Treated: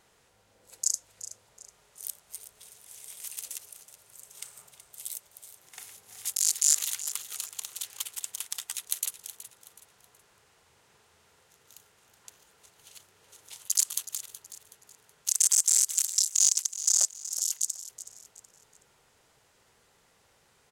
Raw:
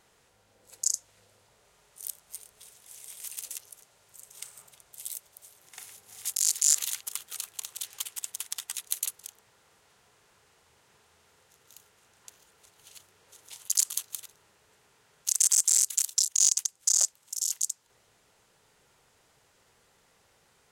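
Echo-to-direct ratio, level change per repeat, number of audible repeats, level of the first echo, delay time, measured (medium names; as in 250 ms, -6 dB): -13.5 dB, -9.0 dB, 3, -14.0 dB, 373 ms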